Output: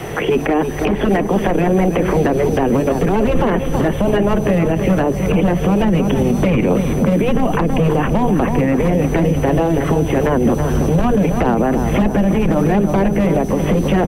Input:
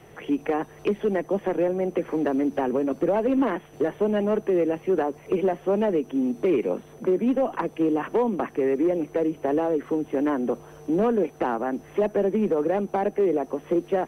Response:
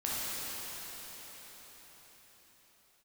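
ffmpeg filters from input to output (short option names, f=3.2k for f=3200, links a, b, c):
-filter_complex "[0:a]afftfilt=real='re*lt(hypot(re,im),0.501)':imag='im*lt(hypot(re,im),0.501)':win_size=1024:overlap=0.75,acrossover=split=600|2600[a][b][c];[a]acompressor=threshold=-32dB:ratio=4[d];[b]acompressor=threshold=-45dB:ratio=4[e];[c]acompressor=threshold=-55dB:ratio=4[f];[d][e][f]amix=inputs=3:normalize=0,asubboost=boost=7.5:cutoff=110,asplit=2[g][h];[h]adelay=325,lowpass=f=2.2k:p=1,volume=-8.5dB,asplit=2[i][j];[j]adelay=325,lowpass=f=2.2k:p=1,volume=0.5,asplit=2[k][l];[l]adelay=325,lowpass=f=2.2k:p=1,volume=0.5,asplit=2[m][n];[n]adelay=325,lowpass=f=2.2k:p=1,volume=0.5,asplit=2[o][p];[p]adelay=325,lowpass=f=2.2k:p=1,volume=0.5,asplit=2[q][r];[r]adelay=325,lowpass=f=2.2k:p=1,volume=0.5[s];[i][k][m][o][q][s]amix=inputs=6:normalize=0[t];[g][t]amix=inputs=2:normalize=0,alimiter=level_in=28.5dB:limit=-1dB:release=50:level=0:latency=1,volume=-5.5dB"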